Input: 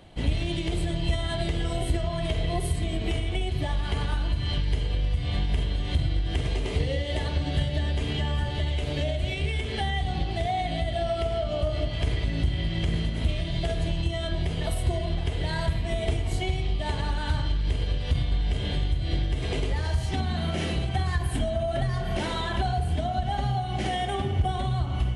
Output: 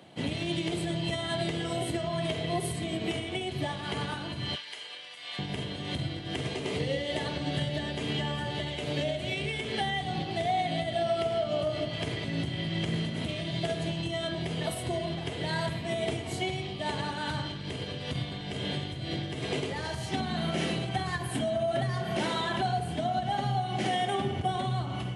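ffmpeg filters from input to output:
-filter_complex "[0:a]asettb=1/sr,asplit=3[s0][s1][s2];[s0]atrim=end=4.554[s3];[s1]atrim=start=4.55:end=5.39,asetpts=PTS-STARTPTS,afade=t=in:d=0.004:c=qsin,afade=t=out:st=0.836:d=0.004:c=qsin,highpass=1100[s4];[s2]atrim=start=5.386[s5];[s3][s4]acrossfade=d=0.004:c1=hsin:c2=qsin[s6];[s6][s5]acrossfade=d=0.004:c1=qsin:c2=hsin,highpass=f=130:w=0.5412,highpass=f=130:w=1.3066"

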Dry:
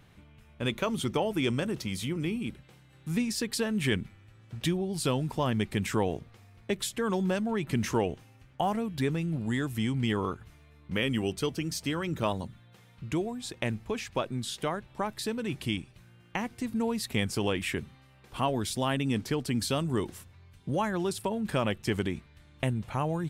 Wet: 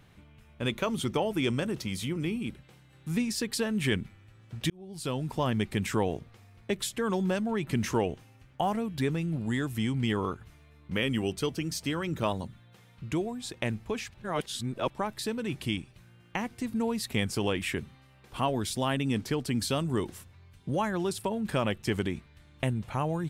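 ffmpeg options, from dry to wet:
-filter_complex "[0:a]asplit=4[s0][s1][s2][s3];[s0]atrim=end=4.7,asetpts=PTS-STARTPTS,afade=t=out:st=4.696:d=0.004:c=hsin[s4];[s1]atrim=start=4.7:end=14.142,asetpts=PTS-STARTPTS,afade=t=in:d=0.67[s5];[s2]atrim=start=14.138:end=14.902,asetpts=PTS-STARTPTS,areverse[s6];[s3]atrim=start=14.898[s7];[s4][s5]concat=n=2:v=0:a=1[s8];[s8][s6]acrossfade=d=0.004:c1=hsin:c2=hsin[s9];[s9][s7]acrossfade=d=0.004:c1=hsin:c2=hsin"

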